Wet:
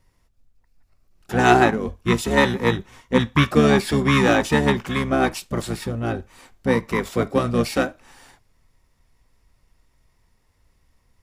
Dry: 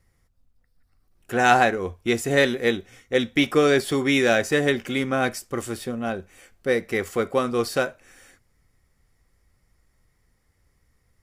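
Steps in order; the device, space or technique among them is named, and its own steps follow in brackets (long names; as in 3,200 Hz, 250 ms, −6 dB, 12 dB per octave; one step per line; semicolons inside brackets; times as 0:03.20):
octave pedal (pitch-shifted copies added −12 semitones 0 dB)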